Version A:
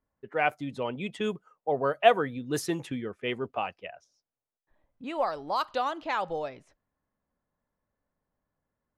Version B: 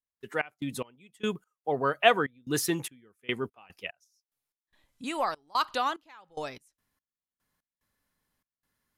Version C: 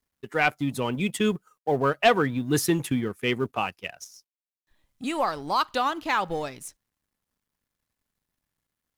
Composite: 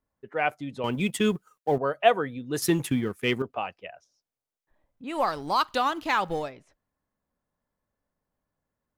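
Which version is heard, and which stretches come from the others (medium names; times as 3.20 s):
A
0.84–1.78 s: from C
2.62–3.42 s: from C
5.14–6.46 s: from C, crossfade 0.16 s
not used: B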